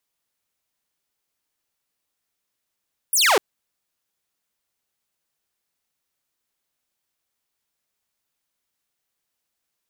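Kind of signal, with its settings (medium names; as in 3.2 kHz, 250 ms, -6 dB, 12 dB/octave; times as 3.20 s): laser zap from 12 kHz, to 350 Hz, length 0.25 s saw, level -11.5 dB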